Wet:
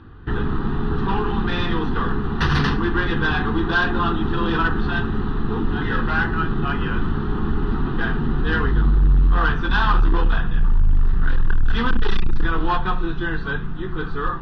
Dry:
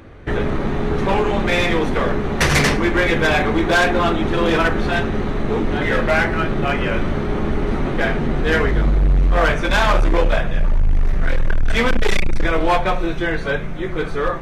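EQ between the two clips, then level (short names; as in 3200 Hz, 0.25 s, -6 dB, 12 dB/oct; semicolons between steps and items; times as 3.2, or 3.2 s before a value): Bessel low-pass 2900 Hz, order 2; fixed phaser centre 2200 Hz, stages 6; 0.0 dB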